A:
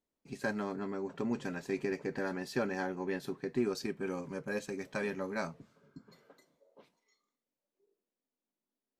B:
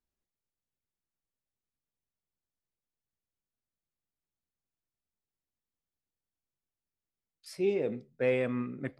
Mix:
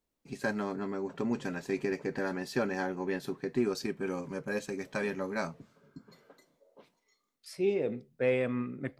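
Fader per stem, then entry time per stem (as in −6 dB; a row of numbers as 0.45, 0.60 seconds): +2.5, 0.0 decibels; 0.00, 0.00 seconds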